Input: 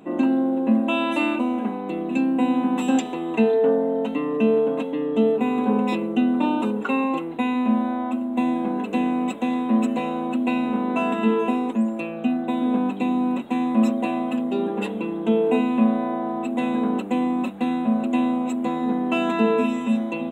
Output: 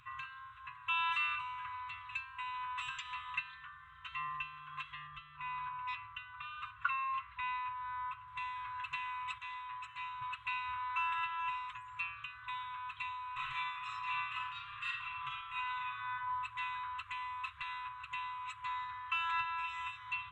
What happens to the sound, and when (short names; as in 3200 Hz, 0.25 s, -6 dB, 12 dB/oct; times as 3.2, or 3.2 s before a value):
5.07–8.28 LPF 2200 Hz 6 dB/oct
9.38–10.22 gain -6.5 dB
13.33–16.12 reverb throw, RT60 0.85 s, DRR -8 dB
whole clip: compressor, threshold -22 dBFS; LPF 3700 Hz 12 dB/oct; FFT band-reject 140–1000 Hz; gain -1.5 dB